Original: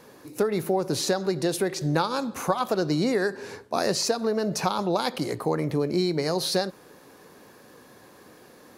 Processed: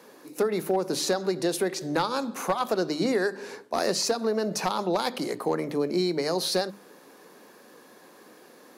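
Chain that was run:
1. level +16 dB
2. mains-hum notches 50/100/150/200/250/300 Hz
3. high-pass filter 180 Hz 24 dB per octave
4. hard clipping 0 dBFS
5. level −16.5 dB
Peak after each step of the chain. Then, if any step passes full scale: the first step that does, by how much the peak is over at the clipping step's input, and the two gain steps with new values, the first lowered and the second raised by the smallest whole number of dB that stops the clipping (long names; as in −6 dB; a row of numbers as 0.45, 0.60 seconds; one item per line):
+8.0, +7.5, +7.0, 0.0, −16.5 dBFS
step 1, 7.0 dB
step 1 +9 dB, step 5 −9.5 dB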